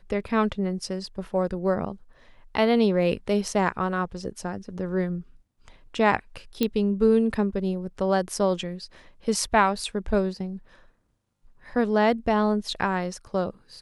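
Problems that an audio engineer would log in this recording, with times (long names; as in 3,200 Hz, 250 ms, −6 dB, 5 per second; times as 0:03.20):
0:06.63: click −10 dBFS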